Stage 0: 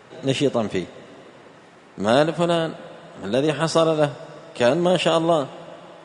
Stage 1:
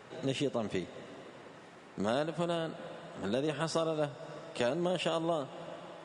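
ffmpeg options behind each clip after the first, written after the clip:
-af "acompressor=threshold=0.0447:ratio=2.5,volume=0.562"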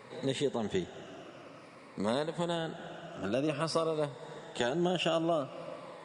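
-af "afftfilt=real='re*pow(10,9/40*sin(2*PI*(0.96*log(max(b,1)*sr/1024/100)/log(2)-(-0.51)*(pts-256)/sr)))':imag='im*pow(10,9/40*sin(2*PI*(0.96*log(max(b,1)*sr/1024/100)/log(2)-(-0.51)*(pts-256)/sr)))':win_size=1024:overlap=0.75"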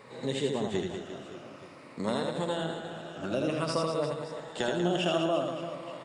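-af "aecho=1:1:80|192|348.8|568.3|875.6:0.631|0.398|0.251|0.158|0.1"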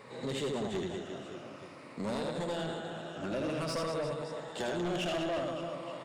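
-af "asoftclip=type=tanh:threshold=0.0335"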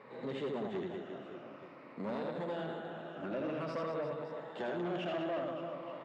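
-af "highpass=160,lowpass=2300,volume=0.75"

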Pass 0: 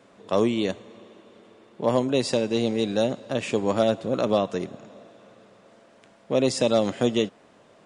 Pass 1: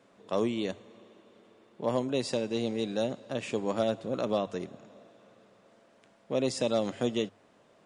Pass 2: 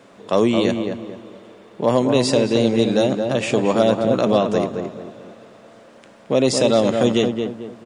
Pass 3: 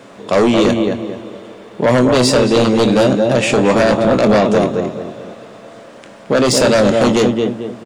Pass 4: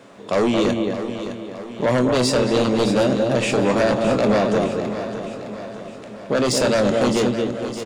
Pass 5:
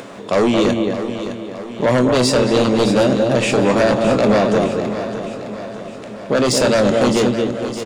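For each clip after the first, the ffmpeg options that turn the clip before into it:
-af "bandreject=f=50:t=h:w=6,bandreject=f=100:t=h:w=6,volume=0.447"
-filter_complex "[0:a]asplit=2[s0][s1];[s1]alimiter=level_in=1.12:limit=0.0631:level=0:latency=1,volume=0.891,volume=0.794[s2];[s0][s2]amix=inputs=2:normalize=0,asplit=2[s3][s4];[s4]adelay=221,lowpass=f=1700:p=1,volume=0.562,asplit=2[s5][s6];[s6]adelay=221,lowpass=f=1700:p=1,volume=0.36,asplit=2[s7][s8];[s8]adelay=221,lowpass=f=1700:p=1,volume=0.36,asplit=2[s9][s10];[s10]adelay=221,lowpass=f=1700:p=1,volume=0.36[s11];[s3][s5][s7][s9][s11]amix=inputs=5:normalize=0,volume=2.82"
-filter_complex "[0:a]aeval=exprs='0.668*sin(PI/2*2.51*val(0)/0.668)':c=same,asplit=2[s0][s1];[s1]adelay=24,volume=0.299[s2];[s0][s2]amix=inputs=2:normalize=0,volume=0.668"
-af "aecho=1:1:612|1224|1836|2448|3060|3672:0.282|0.152|0.0822|0.0444|0.024|0.0129,volume=0.473"
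-af "acompressor=mode=upward:threshold=0.0282:ratio=2.5,volume=1.5"

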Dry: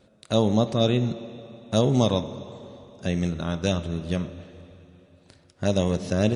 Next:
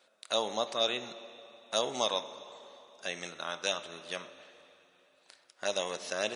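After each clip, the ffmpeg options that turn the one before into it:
-af "highpass=870"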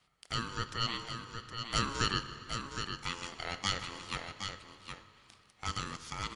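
-filter_complex "[0:a]dynaudnorm=f=200:g=11:m=1.68,aeval=exprs='val(0)*sin(2*PI*690*n/s)':c=same,asplit=2[s0][s1];[s1]aecho=0:1:155|766:0.133|0.447[s2];[s0][s2]amix=inputs=2:normalize=0,volume=0.75"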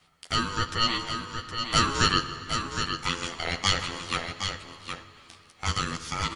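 -filter_complex "[0:a]asplit=2[s0][s1];[s1]adelay=12,volume=0.668[s2];[s0][s2]amix=inputs=2:normalize=0,volume=2.37"

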